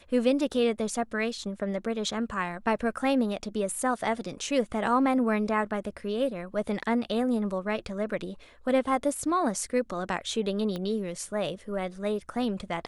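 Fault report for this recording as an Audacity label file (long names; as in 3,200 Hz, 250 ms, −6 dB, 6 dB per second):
10.760000	10.760000	click −21 dBFS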